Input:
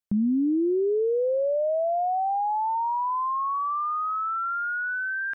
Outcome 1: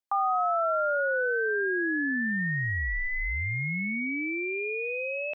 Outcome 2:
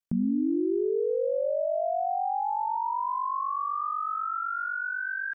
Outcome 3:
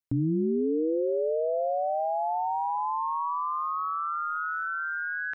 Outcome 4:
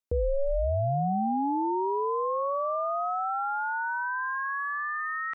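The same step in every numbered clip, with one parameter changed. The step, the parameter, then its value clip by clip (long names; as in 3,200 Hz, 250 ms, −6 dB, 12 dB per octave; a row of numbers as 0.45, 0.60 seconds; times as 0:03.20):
ring modulation, frequency: 1,000, 24, 80, 280 Hertz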